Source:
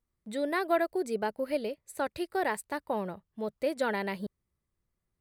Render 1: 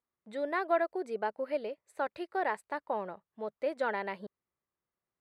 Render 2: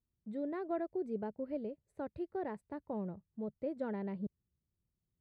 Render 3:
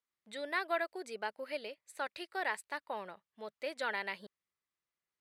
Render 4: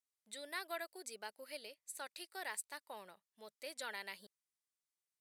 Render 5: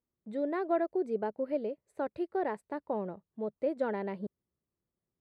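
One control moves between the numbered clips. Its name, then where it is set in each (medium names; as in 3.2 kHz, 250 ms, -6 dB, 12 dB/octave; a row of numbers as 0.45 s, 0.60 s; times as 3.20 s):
band-pass filter, frequency: 980 Hz, 120 Hz, 2.6 kHz, 7.8 kHz, 350 Hz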